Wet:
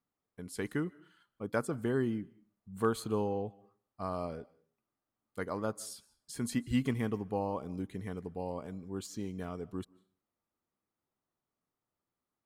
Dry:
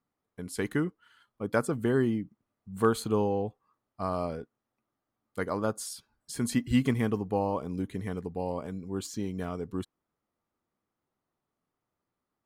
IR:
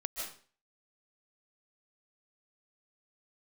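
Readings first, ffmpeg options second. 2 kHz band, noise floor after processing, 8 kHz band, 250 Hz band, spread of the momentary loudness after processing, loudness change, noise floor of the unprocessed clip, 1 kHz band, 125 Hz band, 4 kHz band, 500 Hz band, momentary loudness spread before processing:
−5.5 dB, below −85 dBFS, −5.5 dB, −5.5 dB, 13 LU, −5.5 dB, below −85 dBFS, −5.5 dB, −5.5 dB, −5.5 dB, −5.5 dB, 13 LU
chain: -filter_complex "[0:a]asplit=2[link_01][link_02];[1:a]atrim=start_sample=2205[link_03];[link_02][link_03]afir=irnorm=-1:irlink=0,volume=-21.5dB[link_04];[link_01][link_04]amix=inputs=2:normalize=0,volume=-6dB"

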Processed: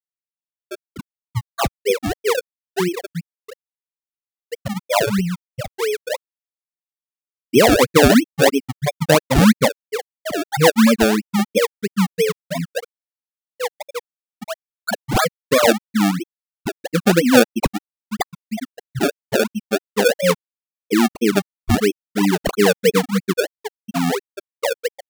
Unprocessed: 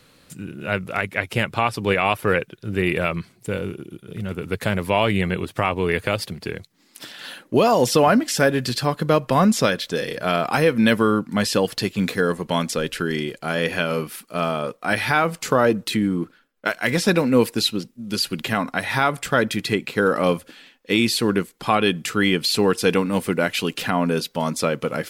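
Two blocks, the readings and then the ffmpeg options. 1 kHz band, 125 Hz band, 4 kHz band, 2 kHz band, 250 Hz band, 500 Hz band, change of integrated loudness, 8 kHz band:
−0.5 dB, +1.0 dB, 0.0 dB, −0.5 dB, +3.0 dB, +2.5 dB, +2.5 dB, +4.0 dB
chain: -af "afftfilt=real='re*gte(hypot(re,im),0.631)':imag='im*gte(hypot(re,im),0.631)':win_size=1024:overlap=0.75,acrusher=samples=30:mix=1:aa=0.000001:lfo=1:lforange=30:lforate=3,volume=5.5dB"

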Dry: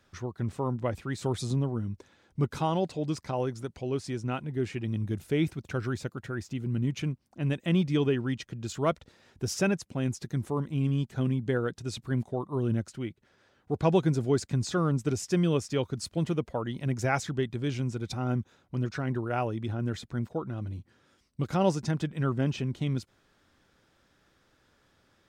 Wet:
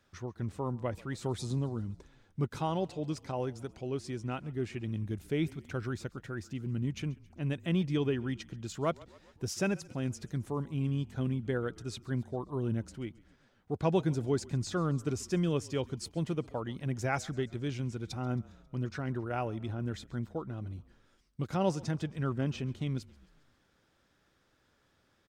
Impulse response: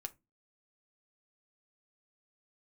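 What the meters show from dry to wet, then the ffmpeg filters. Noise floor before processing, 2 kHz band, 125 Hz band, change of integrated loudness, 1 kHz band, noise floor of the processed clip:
−68 dBFS, −4.5 dB, −4.5 dB, −4.5 dB, −4.5 dB, −71 dBFS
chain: -filter_complex "[0:a]asplit=5[link_01][link_02][link_03][link_04][link_05];[link_02]adelay=135,afreqshift=-35,volume=-22.5dB[link_06];[link_03]adelay=270,afreqshift=-70,volume=-27.1dB[link_07];[link_04]adelay=405,afreqshift=-105,volume=-31.7dB[link_08];[link_05]adelay=540,afreqshift=-140,volume=-36.2dB[link_09];[link_01][link_06][link_07][link_08][link_09]amix=inputs=5:normalize=0,volume=-4.5dB"

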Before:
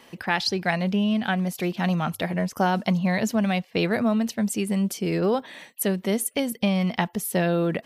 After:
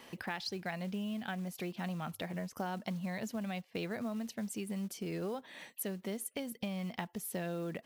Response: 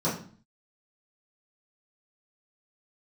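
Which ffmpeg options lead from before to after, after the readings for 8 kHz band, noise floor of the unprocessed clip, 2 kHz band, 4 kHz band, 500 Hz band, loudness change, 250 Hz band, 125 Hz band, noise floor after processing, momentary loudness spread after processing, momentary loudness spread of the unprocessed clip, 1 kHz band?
−12.5 dB, −54 dBFS, −15.0 dB, −14.5 dB, −15.0 dB, −15.0 dB, −15.0 dB, −15.0 dB, −64 dBFS, 2 LU, 4 LU, −15.5 dB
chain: -af "acrusher=bits=6:mode=log:mix=0:aa=0.000001,acompressor=threshold=-39dB:ratio=2.5,volume=-3dB"

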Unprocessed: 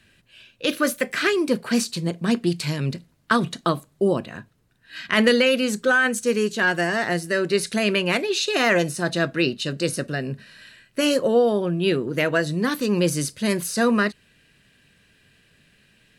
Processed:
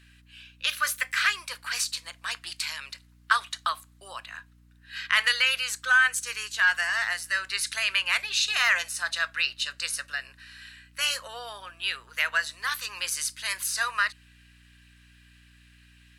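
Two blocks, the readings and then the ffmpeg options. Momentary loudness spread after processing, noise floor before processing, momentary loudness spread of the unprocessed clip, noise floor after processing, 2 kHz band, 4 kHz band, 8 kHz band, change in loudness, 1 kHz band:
18 LU, −62 dBFS, 8 LU, −57 dBFS, 0.0 dB, 0.0 dB, 0.0 dB, −4.0 dB, −4.0 dB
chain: -af "highpass=frequency=1100:width=0.5412,highpass=frequency=1100:width=1.3066,aeval=exprs='val(0)+0.00158*(sin(2*PI*60*n/s)+sin(2*PI*2*60*n/s)/2+sin(2*PI*3*60*n/s)/3+sin(2*PI*4*60*n/s)/4+sin(2*PI*5*60*n/s)/5)':channel_layout=same"

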